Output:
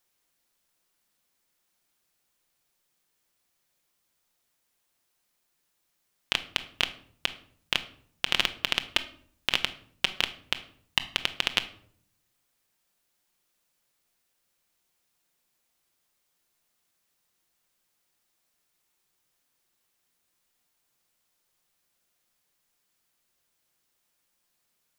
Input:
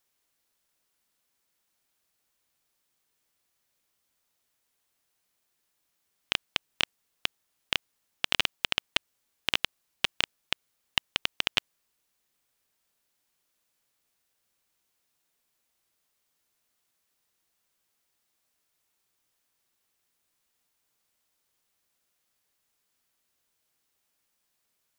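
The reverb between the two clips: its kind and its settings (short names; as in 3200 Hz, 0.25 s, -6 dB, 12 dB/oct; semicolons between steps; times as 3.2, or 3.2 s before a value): shoebox room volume 920 m³, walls furnished, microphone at 0.89 m; gain +1 dB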